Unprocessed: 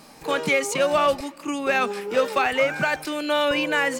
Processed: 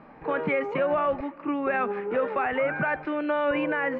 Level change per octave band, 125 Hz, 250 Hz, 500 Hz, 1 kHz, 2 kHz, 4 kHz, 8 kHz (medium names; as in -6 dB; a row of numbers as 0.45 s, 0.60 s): -1.5 dB, -1.0 dB, -3.0 dB, -3.5 dB, -5.5 dB, -17.5 dB, under -40 dB